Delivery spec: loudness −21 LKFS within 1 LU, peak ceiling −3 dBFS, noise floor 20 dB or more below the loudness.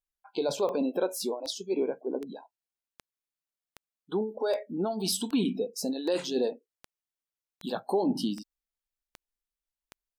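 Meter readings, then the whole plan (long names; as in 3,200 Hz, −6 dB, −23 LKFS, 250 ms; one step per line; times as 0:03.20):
number of clicks 13; integrated loudness −31.0 LKFS; sample peak −16.0 dBFS; target loudness −21.0 LKFS
→ click removal
level +10 dB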